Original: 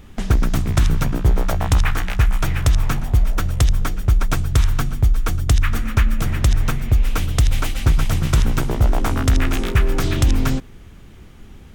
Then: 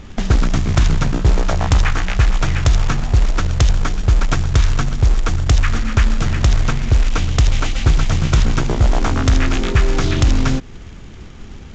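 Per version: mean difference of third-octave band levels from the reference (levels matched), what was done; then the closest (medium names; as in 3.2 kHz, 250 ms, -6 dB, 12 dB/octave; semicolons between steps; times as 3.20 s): 5.0 dB: in parallel at +1 dB: compression 12:1, threshold -24 dBFS, peak gain reduction 14 dB; on the sum: short-mantissa float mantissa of 2-bit; A-law 128 kbps 16 kHz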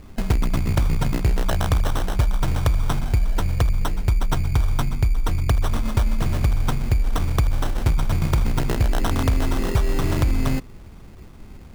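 3.0 dB: resampled via 8 kHz; compression, threshold -15 dBFS, peak gain reduction 5.5 dB; sample-and-hold 19×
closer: second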